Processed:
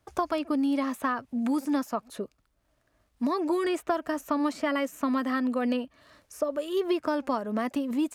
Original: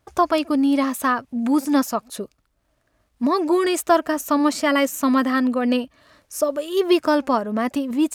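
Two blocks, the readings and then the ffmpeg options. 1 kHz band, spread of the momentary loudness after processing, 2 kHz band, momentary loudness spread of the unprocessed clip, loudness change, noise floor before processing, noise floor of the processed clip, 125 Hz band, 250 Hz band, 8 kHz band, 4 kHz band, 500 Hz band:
-9.0 dB, 6 LU, -9.0 dB, 7 LU, -8.5 dB, -68 dBFS, -72 dBFS, n/a, -8.0 dB, -15.0 dB, -11.0 dB, -8.5 dB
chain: -filter_complex "[0:a]acrossover=split=160|2900[a][b][c];[a]acompressor=threshold=-47dB:ratio=4[d];[b]acompressor=threshold=-21dB:ratio=4[e];[c]acompressor=threshold=-45dB:ratio=4[f];[d][e][f]amix=inputs=3:normalize=0,volume=-3.5dB"

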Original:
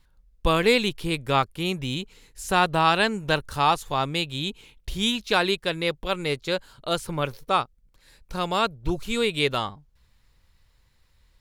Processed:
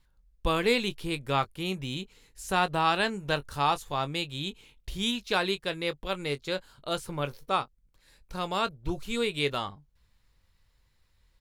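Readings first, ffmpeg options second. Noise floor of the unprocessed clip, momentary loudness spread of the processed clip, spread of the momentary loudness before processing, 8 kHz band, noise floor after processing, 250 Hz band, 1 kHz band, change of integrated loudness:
-63 dBFS, 11 LU, 11 LU, -5.5 dB, -68 dBFS, -5.0 dB, -5.0 dB, -5.0 dB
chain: -filter_complex "[0:a]asplit=2[a][b];[b]adelay=21,volume=-12.5dB[c];[a][c]amix=inputs=2:normalize=0,volume=-5.5dB"

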